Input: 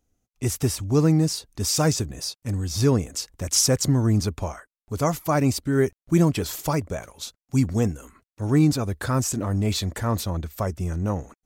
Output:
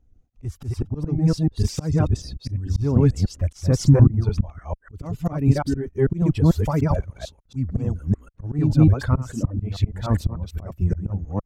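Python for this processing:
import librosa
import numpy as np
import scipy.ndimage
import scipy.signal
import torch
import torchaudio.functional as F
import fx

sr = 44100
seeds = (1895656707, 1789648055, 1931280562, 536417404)

p1 = fx.reverse_delay(x, sr, ms=148, wet_db=0)
p2 = fx.clip_asym(p1, sr, top_db=-24.0, bottom_db=-10.0)
p3 = p1 + F.gain(torch.from_numpy(p2), -7.0).numpy()
p4 = fx.dereverb_blind(p3, sr, rt60_s=1.9)
p5 = fx.auto_swell(p4, sr, attack_ms=303.0)
p6 = fx.riaa(p5, sr, side='playback')
y = F.gain(torch.from_numpy(p6), -4.0).numpy()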